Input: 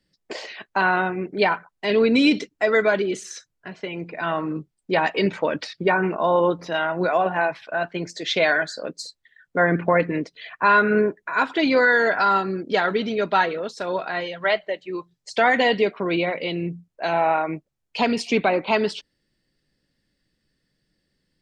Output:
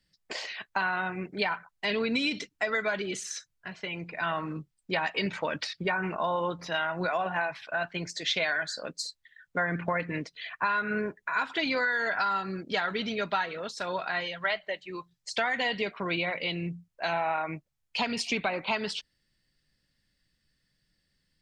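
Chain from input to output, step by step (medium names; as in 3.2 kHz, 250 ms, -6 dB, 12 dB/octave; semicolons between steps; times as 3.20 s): peaking EQ 370 Hz -10.5 dB 2 oct; compression 6:1, threshold -25 dBFS, peak gain reduction 10 dB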